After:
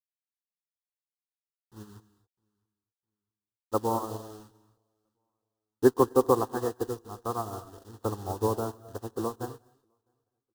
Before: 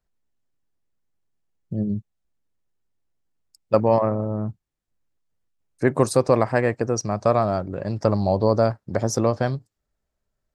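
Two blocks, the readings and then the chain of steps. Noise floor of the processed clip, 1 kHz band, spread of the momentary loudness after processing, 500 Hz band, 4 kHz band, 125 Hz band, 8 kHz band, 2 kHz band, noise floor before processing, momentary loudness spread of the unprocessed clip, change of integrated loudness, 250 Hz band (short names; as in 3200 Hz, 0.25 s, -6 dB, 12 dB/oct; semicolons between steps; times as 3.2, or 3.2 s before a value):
under -85 dBFS, -6.5 dB, 18 LU, -8.0 dB, -10.0 dB, -13.5 dB, -10.0 dB, -14.0 dB, -81 dBFS, 9 LU, -7.0 dB, -7.5 dB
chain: LPF 1100 Hz 12 dB/oct; dynamic EQ 230 Hz, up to -4 dB, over -32 dBFS, Q 0.71; requantised 6-bit, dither none; fixed phaser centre 600 Hz, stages 6; feedback echo 0.657 s, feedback 34%, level -23 dB; non-linear reverb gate 0.28 s rising, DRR 7.5 dB; upward expander 2.5:1, over -39 dBFS; gain +6 dB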